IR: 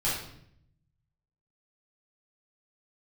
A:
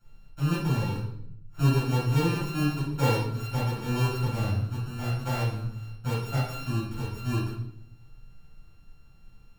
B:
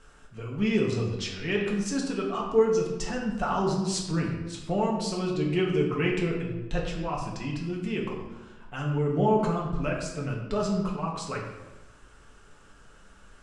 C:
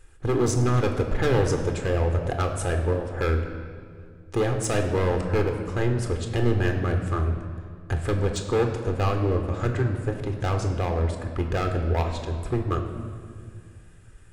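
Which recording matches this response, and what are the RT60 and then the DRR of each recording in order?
A; 0.70, 1.1, 2.1 s; -9.5, -2.5, 4.0 dB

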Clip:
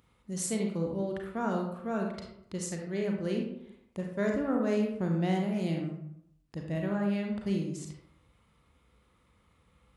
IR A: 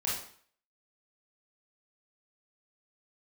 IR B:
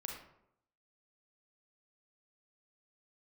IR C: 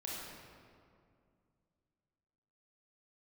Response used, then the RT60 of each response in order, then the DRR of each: B; 0.55, 0.75, 2.3 s; -6.5, 0.5, -5.5 dB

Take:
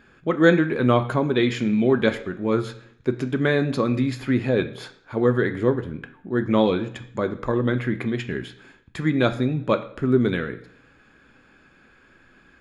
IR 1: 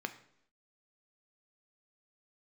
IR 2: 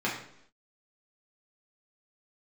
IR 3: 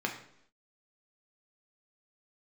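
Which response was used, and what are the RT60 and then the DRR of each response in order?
1; 0.70, 0.70, 0.70 s; 8.0, -6.0, 1.0 dB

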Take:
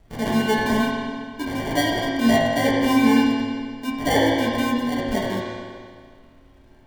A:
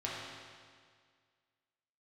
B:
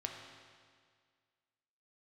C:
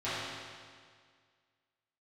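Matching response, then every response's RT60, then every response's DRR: A; 1.9, 1.9, 1.9 s; -6.5, 1.0, -15.0 dB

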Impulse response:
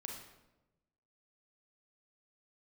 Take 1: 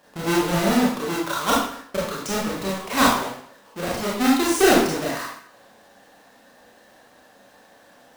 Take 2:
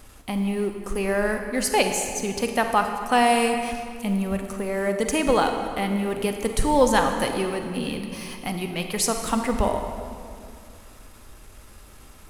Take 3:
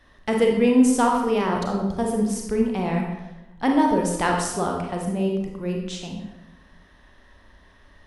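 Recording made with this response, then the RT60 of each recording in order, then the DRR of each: 3; 0.65, 2.3, 1.0 s; -5.5, 5.0, 0.5 dB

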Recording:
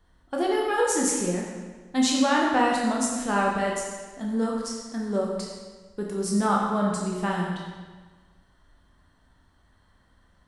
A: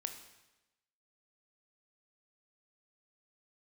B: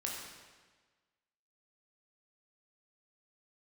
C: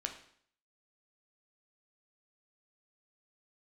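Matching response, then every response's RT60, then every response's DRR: B; 1.0, 1.4, 0.60 s; 6.0, -2.5, 3.5 dB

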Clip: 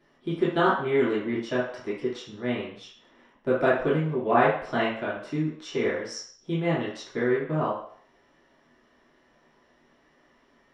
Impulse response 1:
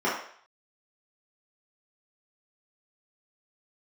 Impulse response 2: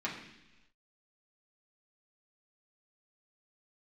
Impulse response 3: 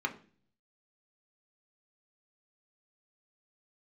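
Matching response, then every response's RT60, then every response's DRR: 1; 0.55 s, not exponential, 0.40 s; -9.5, -6.0, 2.5 dB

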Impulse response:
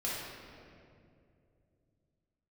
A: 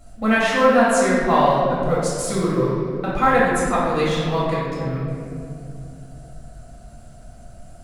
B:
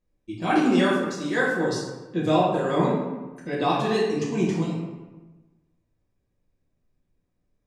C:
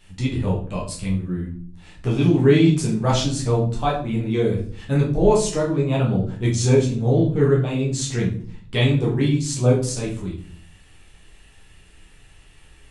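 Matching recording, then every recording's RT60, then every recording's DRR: A; 2.5, 1.2, 0.50 s; -7.5, -8.0, -5.0 dB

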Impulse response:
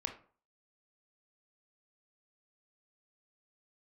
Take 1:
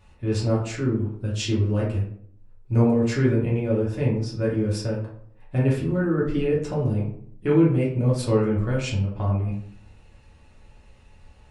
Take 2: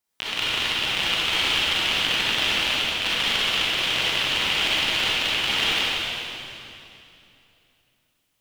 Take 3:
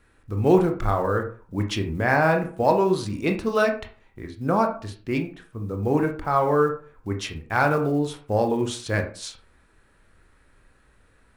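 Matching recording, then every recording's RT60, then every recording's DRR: 3; 0.60, 2.8, 0.45 s; -6.0, -9.0, 4.0 dB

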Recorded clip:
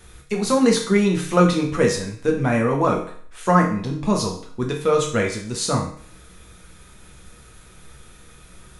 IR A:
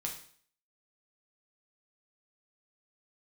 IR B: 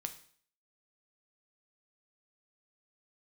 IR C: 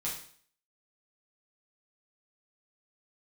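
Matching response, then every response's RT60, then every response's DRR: A; 0.50, 0.55, 0.50 s; -0.5, 6.5, -7.0 dB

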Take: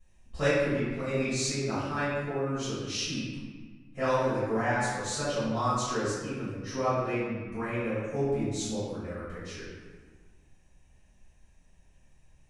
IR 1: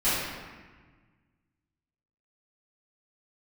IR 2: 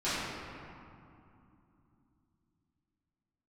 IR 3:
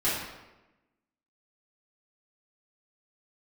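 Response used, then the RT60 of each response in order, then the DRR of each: 1; 1.4, 2.7, 1.0 s; -16.0, -15.0, -11.5 dB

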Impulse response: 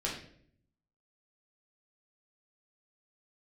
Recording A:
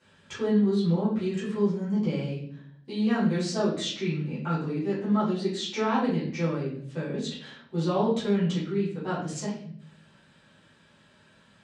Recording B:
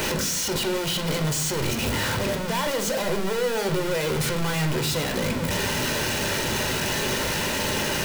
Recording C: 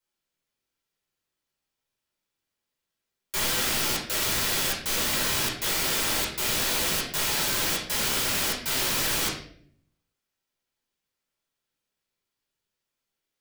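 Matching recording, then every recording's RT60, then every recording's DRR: C; 0.60, 0.60, 0.60 s; -11.5, 4.5, -5.0 dB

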